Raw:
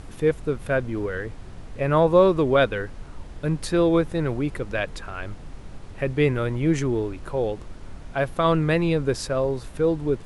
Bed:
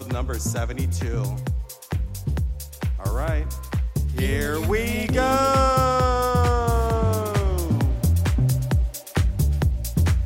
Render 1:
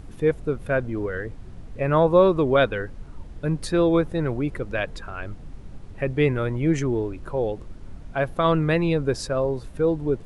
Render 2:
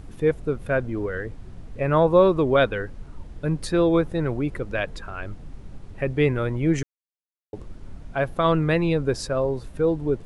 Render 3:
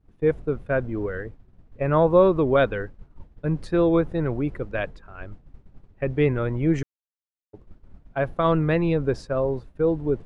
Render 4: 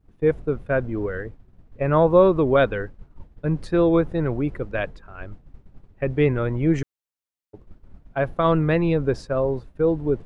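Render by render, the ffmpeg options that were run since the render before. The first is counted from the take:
-af "afftdn=nr=7:nf=-41"
-filter_complex "[0:a]asplit=3[a][b][c];[a]atrim=end=6.83,asetpts=PTS-STARTPTS,afade=t=out:st=6.826:d=0.004:c=hsin[d];[b]atrim=start=6.83:end=7.53,asetpts=PTS-STARTPTS,volume=0[e];[c]atrim=start=7.53,asetpts=PTS-STARTPTS,afade=t=in:d=0.004:c=hsin[f];[d][e][f]concat=n=3:v=0:a=1"
-af "aemphasis=mode=reproduction:type=75kf,agate=range=-33dB:threshold=-27dB:ratio=3:detection=peak"
-af "volume=1.5dB"

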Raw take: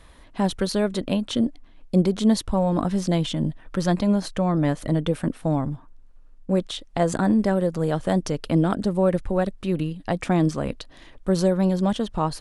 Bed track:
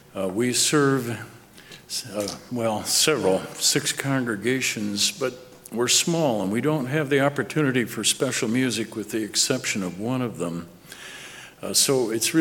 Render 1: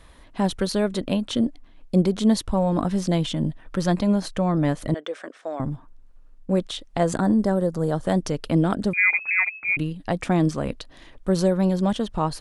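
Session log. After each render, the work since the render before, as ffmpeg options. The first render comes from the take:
-filter_complex "[0:a]asettb=1/sr,asplit=3[a][b][c];[a]atrim=end=4.944[d];[b]atrim=start=4.94:end=5.6,asetpts=PTS-STARTPTS,afade=t=in:d=0.004:c=qsin,afade=t=out:st=0.656:d=0.004:c=qsin,highpass=f=440:w=0.5412,highpass=f=440:w=1.3066,equalizer=f=480:t=q:w=4:g=-3,equalizer=f=880:t=q:w=4:g=-8,equalizer=f=1.8k:t=q:w=4:g=3,equalizer=f=2.7k:t=q:w=4:g=-5,equalizer=f=4.3k:t=q:w=4:g=-5,lowpass=f=6.9k:w=0.5412,lowpass=f=6.9k:w=1.3066[e];[c]atrim=start=5.596[f];[d][e]acrossfade=d=0.004:c1=hsin:c2=qsin[g];[g][f]acrossfade=d=0.004:c1=qsin:c2=hsin,asettb=1/sr,asplit=3[h][i][j];[h]atrim=end=7.204[k];[i]atrim=start=7.2:end=8.06,asetpts=PTS-STARTPTS,afade=t=in:d=0.004:c=qsin,afade=t=out:st=0.856:d=0.004:c=qsin,equalizer=f=2.5k:w=1.8:g=-12[l];[j]atrim=start=8.056[m];[k][l]acrossfade=d=0.004:c1=hsin:c2=qsin[n];[n][m]acrossfade=d=0.004:c1=qsin:c2=hsin,asettb=1/sr,asplit=3[o][p][q];[o]atrim=end=8.934[r];[p]atrim=start=8.93:end=9.77,asetpts=PTS-STARTPTS,afade=t=in:d=0.004:c=qsin,afade=t=out:st=0.836:d=0.004:c=qsin,lowpass=f=2.2k:t=q:w=0.5098,lowpass=f=2.2k:t=q:w=0.6013,lowpass=f=2.2k:t=q:w=0.9,lowpass=f=2.2k:t=q:w=2.563,afreqshift=-2600[s];[q]atrim=start=9.766[t];[r][s]acrossfade=d=0.004:c1=hsin:c2=qsin[u];[u][t]acrossfade=d=0.004:c1=qsin:c2=hsin"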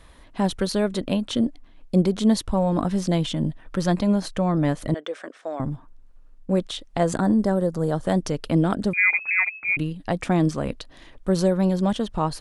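-af anull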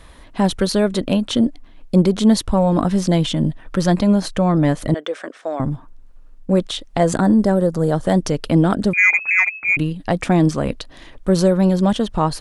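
-af "acontrast=56"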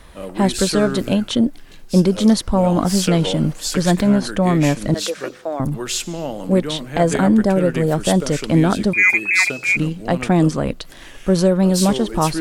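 -filter_complex "[1:a]volume=-4.5dB[a];[0:a][a]amix=inputs=2:normalize=0"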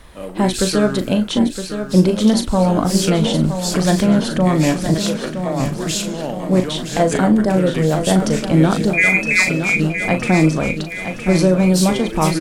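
-filter_complex "[0:a]asplit=2[a][b];[b]adelay=38,volume=-9dB[c];[a][c]amix=inputs=2:normalize=0,aecho=1:1:966|1932|2898|3864|4830|5796:0.355|0.188|0.0997|0.0528|0.028|0.0148"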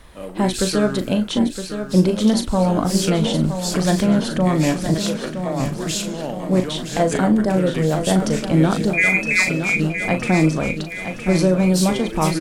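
-af "volume=-2.5dB"

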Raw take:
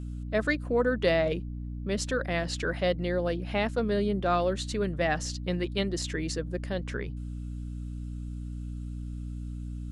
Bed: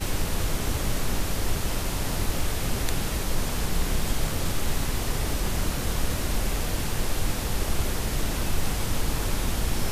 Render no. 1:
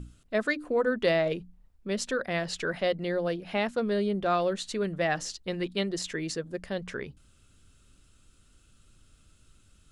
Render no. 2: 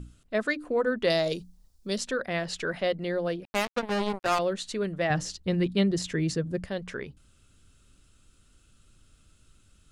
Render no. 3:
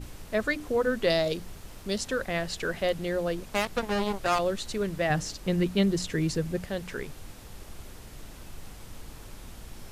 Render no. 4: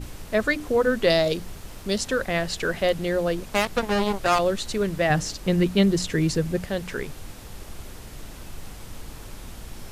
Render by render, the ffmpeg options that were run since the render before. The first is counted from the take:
-af "bandreject=f=60:t=h:w=6,bandreject=f=120:t=h:w=6,bandreject=f=180:t=h:w=6,bandreject=f=240:t=h:w=6,bandreject=f=300:t=h:w=6"
-filter_complex "[0:a]asettb=1/sr,asplit=3[a][b][c];[a]atrim=end=1.104[d];[b]atrim=start=1.1:end=1.98,asetpts=PTS-STARTPTS,afade=t=in:d=0.004:c=qsin,afade=t=out:st=0.876:d=0.004:c=qsin,highshelf=f=3.4k:t=q:w=1.5:g=13[e];[c]atrim=start=1.976[f];[d][e]acrossfade=d=0.004:c1=hsin:c2=qsin[g];[g][f]acrossfade=d=0.004:c1=qsin:c2=hsin,asettb=1/sr,asplit=3[h][i][j];[h]atrim=end=3.454[k];[i]atrim=start=3.45:end=4.39,asetpts=PTS-STARTPTS,afade=t=in:d=0.004:c=qsin,afade=t=out:st=0.936:d=0.004:c=qsin,acrusher=bits=3:mix=0:aa=0.5[l];[j]atrim=start=4.386[m];[k][l]acrossfade=d=0.004:c1=hsin:c2=qsin[n];[n][m]acrossfade=d=0.004:c1=qsin:c2=hsin,asettb=1/sr,asplit=3[o][p][q];[o]atrim=end=5.104[r];[p]atrim=start=5.1:end=6.66,asetpts=PTS-STARTPTS,afade=t=in:d=0.004:c=qsin,afade=t=out:st=1.556:d=0.004:c=qsin,equalizer=f=110:t=o:w=2.3:g=13.5[s];[q]atrim=start=6.656[t];[r][s]acrossfade=d=0.004:c1=hsin:c2=qsin[u];[u][t]acrossfade=d=0.004:c1=qsin:c2=hsin"
-filter_complex "[1:a]volume=-18dB[a];[0:a][a]amix=inputs=2:normalize=0"
-af "volume=5dB"

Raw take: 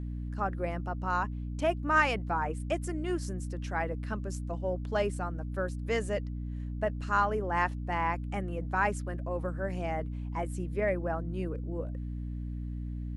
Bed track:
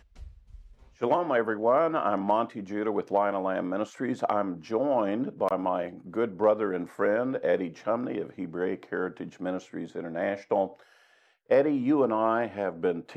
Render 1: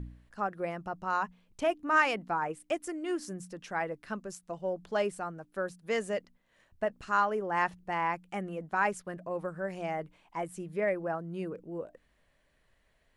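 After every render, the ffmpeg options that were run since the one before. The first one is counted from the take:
-af "bandreject=f=60:t=h:w=4,bandreject=f=120:t=h:w=4,bandreject=f=180:t=h:w=4,bandreject=f=240:t=h:w=4,bandreject=f=300:t=h:w=4"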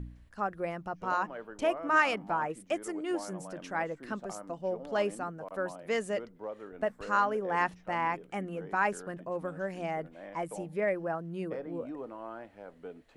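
-filter_complex "[1:a]volume=-17.5dB[a];[0:a][a]amix=inputs=2:normalize=0"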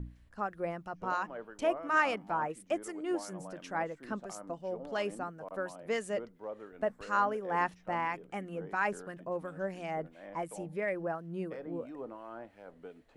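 -filter_complex "[0:a]acrossover=split=1400[a][b];[a]aeval=exprs='val(0)*(1-0.5/2+0.5/2*cos(2*PI*2.9*n/s))':c=same[c];[b]aeval=exprs='val(0)*(1-0.5/2-0.5/2*cos(2*PI*2.9*n/s))':c=same[d];[c][d]amix=inputs=2:normalize=0"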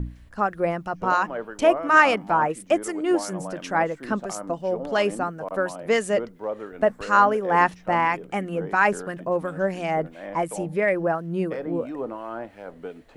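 -af "volume=12dB"

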